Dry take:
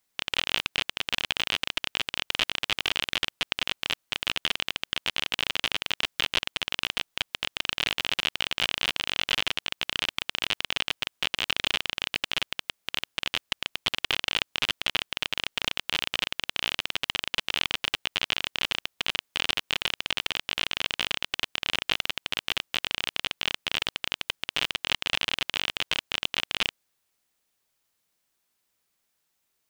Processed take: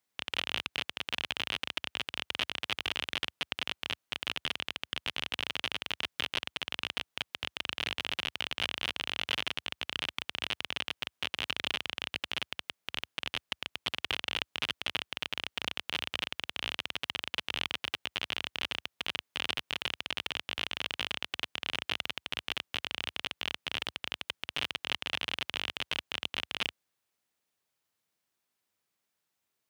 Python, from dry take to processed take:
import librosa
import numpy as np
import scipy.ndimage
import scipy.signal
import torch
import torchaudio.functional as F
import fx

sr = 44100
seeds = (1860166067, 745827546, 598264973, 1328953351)

p1 = scipy.signal.sosfilt(scipy.signal.butter(4, 69.0, 'highpass', fs=sr, output='sos'), x)
p2 = fx.high_shelf(p1, sr, hz=3800.0, db=-4.5)
p3 = np.clip(10.0 ** (17.0 / 20.0) * p2, -1.0, 1.0) / 10.0 ** (17.0 / 20.0)
p4 = p2 + F.gain(torch.from_numpy(p3), -10.0).numpy()
y = F.gain(torch.from_numpy(p4), -6.5).numpy()